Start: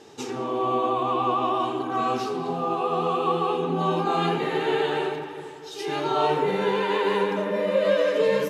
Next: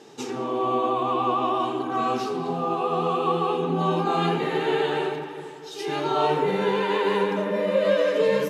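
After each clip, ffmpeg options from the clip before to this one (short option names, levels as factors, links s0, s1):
-af "lowshelf=f=110:t=q:w=1.5:g=-8"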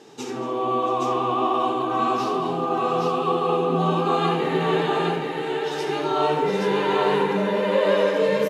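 -af "aecho=1:1:72|232|677|821:0.355|0.133|0.133|0.708"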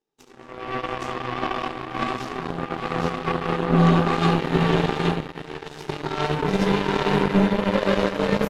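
-af "asubboost=boost=5:cutoff=220,aeval=exprs='0.447*(cos(1*acos(clip(val(0)/0.447,-1,1)))-cos(1*PI/2))+0.0316*(cos(6*acos(clip(val(0)/0.447,-1,1)))-cos(6*PI/2))+0.0631*(cos(7*acos(clip(val(0)/0.447,-1,1)))-cos(7*PI/2))+0.0158*(cos(8*acos(clip(val(0)/0.447,-1,1)))-cos(8*PI/2))':c=same"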